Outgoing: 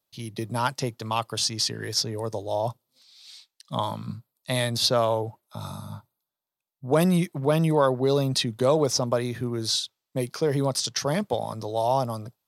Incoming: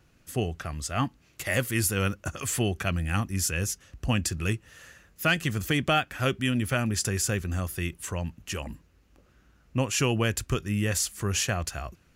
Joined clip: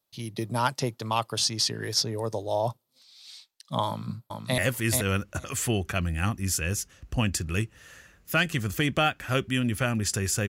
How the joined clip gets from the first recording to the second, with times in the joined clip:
outgoing
3.87–4.58 s: echo throw 430 ms, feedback 10%, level -4.5 dB
4.58 s: go over to incoming from 1.49 s

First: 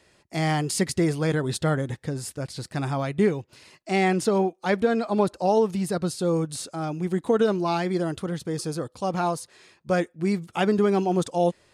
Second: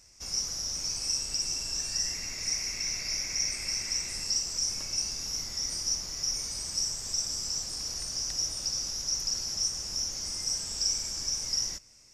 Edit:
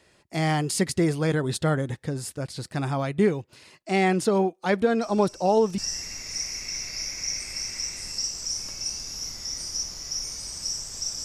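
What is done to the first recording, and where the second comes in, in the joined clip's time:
first
5.01 s: add second from 1.13 s 0.77 s -15 dB
5.78 s: go over to second from 1.90 s

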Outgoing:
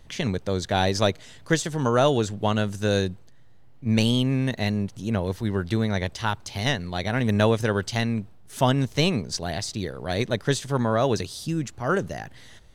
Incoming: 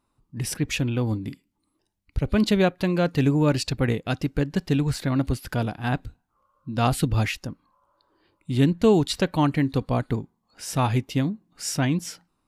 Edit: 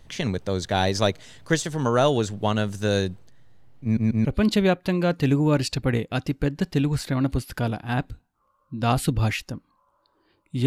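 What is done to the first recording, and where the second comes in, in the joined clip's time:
outgoing
3.83 s: stutter in place 0.14 s, 3 plays
4.25 s: go over to incoming from 2.20 s

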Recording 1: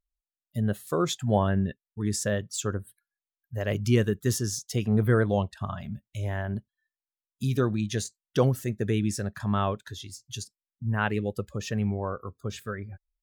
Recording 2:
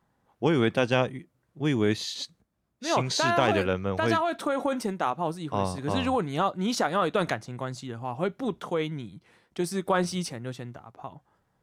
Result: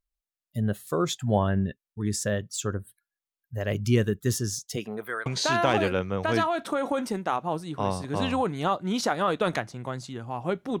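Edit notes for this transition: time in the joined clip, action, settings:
recording 1
4.75–5.26 s: high-pass 230 Hz -> 1.4 kHz
5.26 s: go over to recording 2 from 3.00 s

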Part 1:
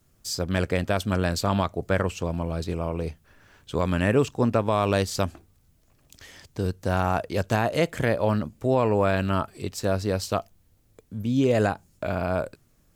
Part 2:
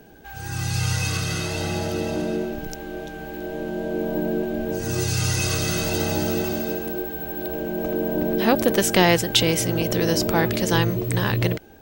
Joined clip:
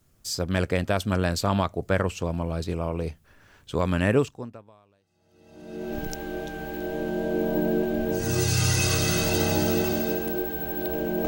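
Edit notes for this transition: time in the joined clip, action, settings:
part 1
5.07 s: go over to part 2 from 1.67 s, crossfade 1.78 s exponential

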